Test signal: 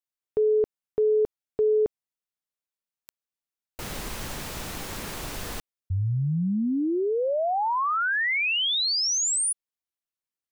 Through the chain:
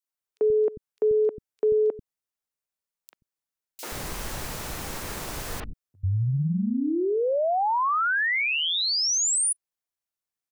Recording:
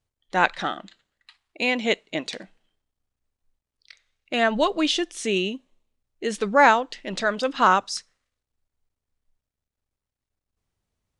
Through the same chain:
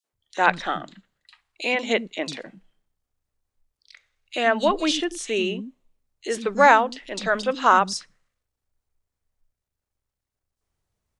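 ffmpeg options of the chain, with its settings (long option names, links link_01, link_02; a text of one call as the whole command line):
ffmpeg -i in.wav -filter_complex "[0:a]acrossover=split=240|3200[link_01][link_02][link_03];[link_02]adelay=40[link_04];[link_01]adelay=130[link_05];[link_05][link_04][link_03]amix=inputs=3:normalize=0,volume=1.5dB" out.wav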